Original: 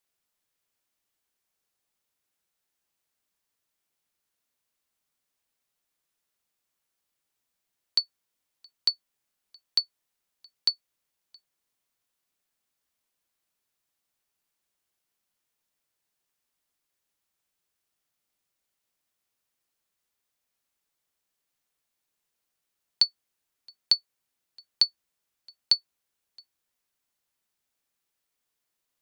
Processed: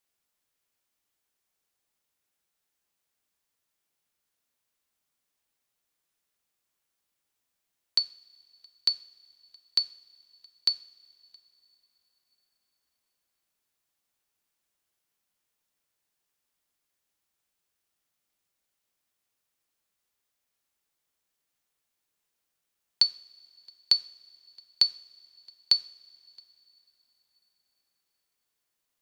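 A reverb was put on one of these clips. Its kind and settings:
coupled-rooms reverb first 0.54 s, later 3.9 s, from −18 dB, DRR 13.5 dB

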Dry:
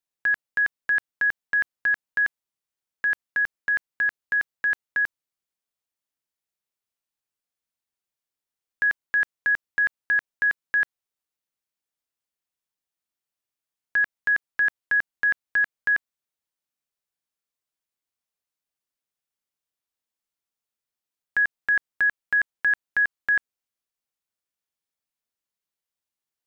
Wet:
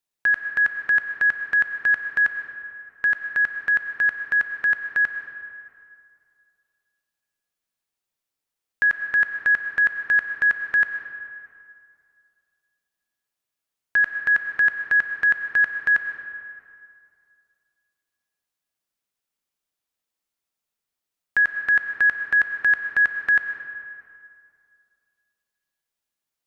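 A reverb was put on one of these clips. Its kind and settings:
comb and all-pass reverb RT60 2.4 s, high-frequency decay 0.6×, pre-delay 65 ms, DRR 6.5 dB
level +3 dB

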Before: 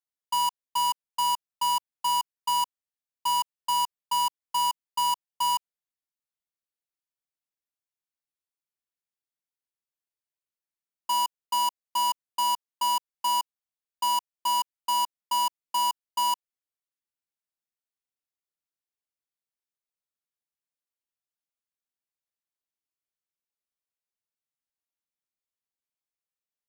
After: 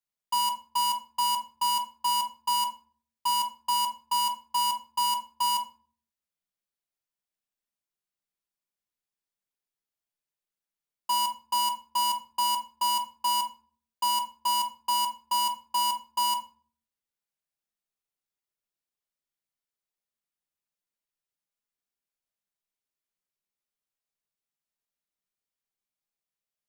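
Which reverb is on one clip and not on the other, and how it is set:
rectangular room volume 370 cubic metres, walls furnished, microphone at 1.3 metres
level −1 dB

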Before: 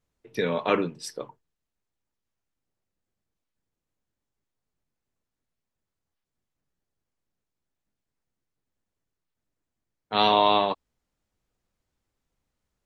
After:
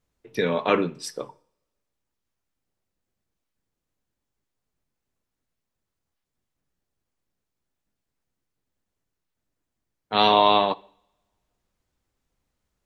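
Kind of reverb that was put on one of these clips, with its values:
coupled-rooms reverb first 0.58 s, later 1.7 s, from −25 dB, DRR 19.5 dB
level +2.5 dB

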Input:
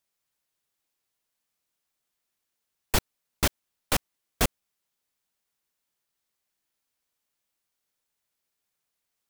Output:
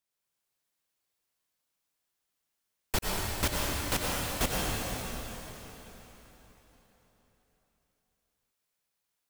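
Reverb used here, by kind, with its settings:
dense smooth reverb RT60 4.1 s, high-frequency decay 0.9×, pre-delay 80 ms, DRR −4 dB
level −6 dB

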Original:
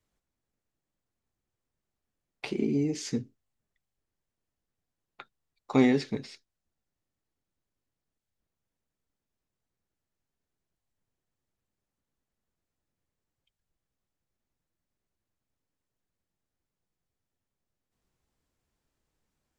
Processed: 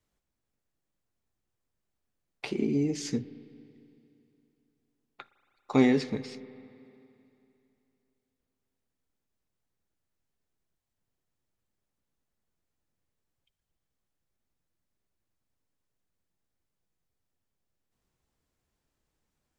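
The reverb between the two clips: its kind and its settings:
spring reverb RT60 2.9 s, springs 38/56 ms, chirp 40 ms, DRR 16 dB

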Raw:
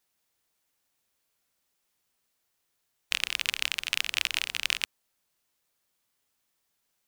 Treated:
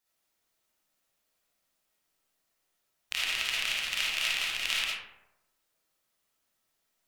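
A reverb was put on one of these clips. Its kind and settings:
comb and all-pass reverb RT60 0.91 s, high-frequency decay 0.45×, pre-delay 15 ms, DRR −7 dB
level −7 dB

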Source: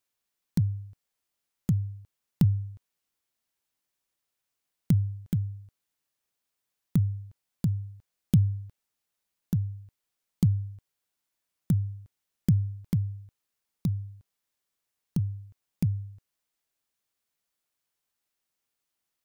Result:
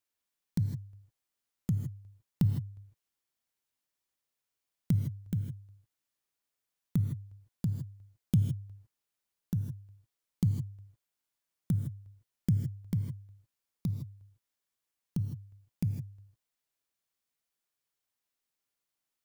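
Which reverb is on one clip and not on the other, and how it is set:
reverb whose tail is shaped and stops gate 180 ms rising, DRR 5.5 dB
level −5 dB

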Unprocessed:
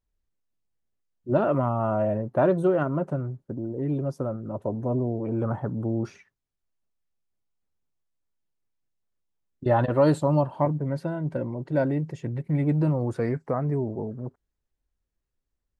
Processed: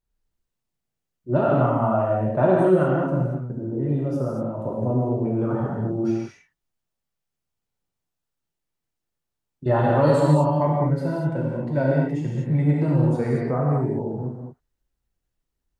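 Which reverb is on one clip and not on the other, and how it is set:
reverb whose tail is shaped and stops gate 260 ms flat, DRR −4 dB
level −1.5 dB

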